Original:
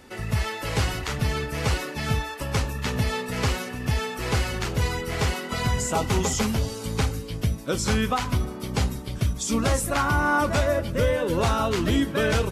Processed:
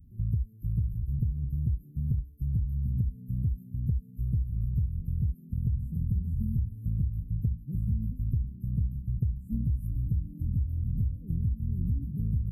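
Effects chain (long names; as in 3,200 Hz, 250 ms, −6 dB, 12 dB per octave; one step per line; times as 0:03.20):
inverse Chebyshev band-stop filter 780–5,800 Hz, stop band 80 dB
dynamic equaliser 230 Hz, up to +4 dB, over −51 dBFS, Q 6.7
downward compressor, threshold −30 dBFS, peak gain reduction 10.5 dB
level +5 dB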